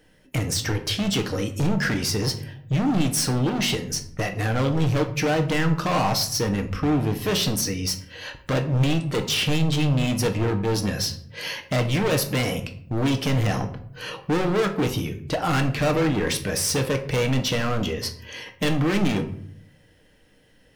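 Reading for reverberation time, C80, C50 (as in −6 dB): 0.65 s, 15.0 dB, 11.5 dB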